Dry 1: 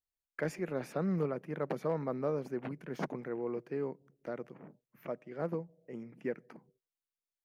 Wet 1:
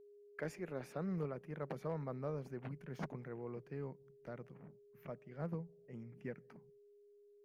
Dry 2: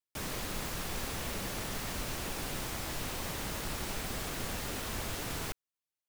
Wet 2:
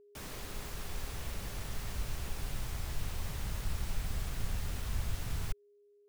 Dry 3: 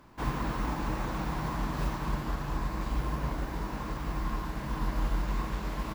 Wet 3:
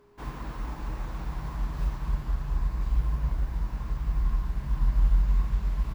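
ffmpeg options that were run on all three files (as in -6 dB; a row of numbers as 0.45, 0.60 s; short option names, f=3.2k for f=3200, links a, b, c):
-af "aeval=exprs='val(0)+0.00282*sin(2*PI*410*n/s)':c=same,asubboost=boost=7.5:cutoff=120,volume=-7dB"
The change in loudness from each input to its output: -7.5, -3.5, +3.0 LU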